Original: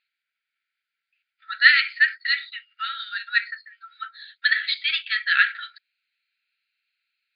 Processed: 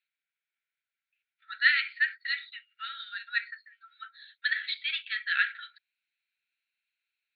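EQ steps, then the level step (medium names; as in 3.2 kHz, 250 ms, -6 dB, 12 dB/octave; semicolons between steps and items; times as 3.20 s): Chebyshev band-pass 1.4–4 kHz, order 3; -7.5 dB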